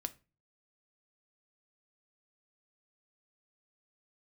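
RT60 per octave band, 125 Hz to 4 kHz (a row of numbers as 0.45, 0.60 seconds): 0.60, 0.45, 0.35, 0.30, 0.30, 0.25 seconds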